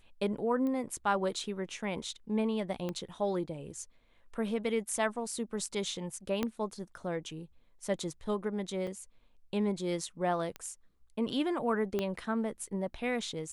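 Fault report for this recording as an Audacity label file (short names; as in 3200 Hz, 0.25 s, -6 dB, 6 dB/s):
0.670000	0.670000	pop -26 dBFS
2.890000	2.890000	pop -23 dBFS
6.430000	6.430000	pop -17 dBFS
8.870000	8.870000	gap 4.6 ms
10.560000	10.560000	pop -25 dBFS
11.990000	11.990000	pop -19 dBFS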